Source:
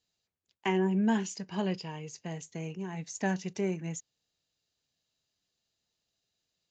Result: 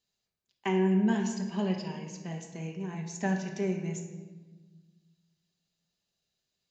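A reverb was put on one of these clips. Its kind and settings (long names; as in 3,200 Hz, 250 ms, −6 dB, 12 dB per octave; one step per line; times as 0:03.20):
rectangular room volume 1,000 cubic metres, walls mixed, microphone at 1.2 metres
level −2.5 dB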